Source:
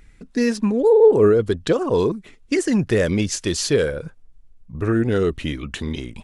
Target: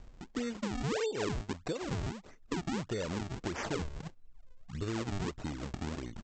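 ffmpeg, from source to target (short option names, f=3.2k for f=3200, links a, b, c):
-af "acompressor=mode=upward:threshold=-37dB:ratio=2.5,aresample=16000,acrusher=samples=18:mix=1:aa=0.000001:lfo=1:lforange=28.8:lforate=1.6,aresample=44100,acompressor=threshold=-27dB:ratio=4,volume=-7.5dB"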